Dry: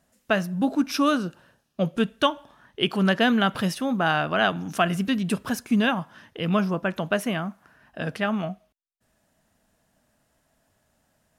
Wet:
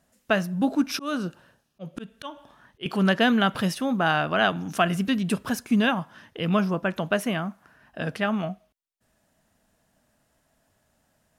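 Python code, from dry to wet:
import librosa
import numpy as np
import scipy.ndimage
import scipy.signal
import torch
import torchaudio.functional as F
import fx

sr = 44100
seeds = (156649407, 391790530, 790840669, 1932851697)

y = fx.auto_swell(x, sr, attack_ms=248.0, at=(0.76, 2.86))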